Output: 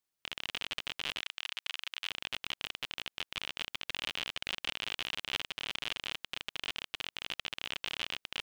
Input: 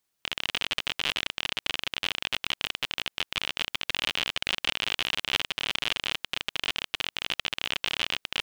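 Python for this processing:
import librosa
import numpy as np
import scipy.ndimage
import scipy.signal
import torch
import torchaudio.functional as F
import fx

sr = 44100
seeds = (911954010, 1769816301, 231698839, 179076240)

y = fx.highpass(x, sr, hz=1000.0, slope=12, at=(1.21, 2.1))
y = F.gain(torch.from_numpy(y), -8.5).numpy()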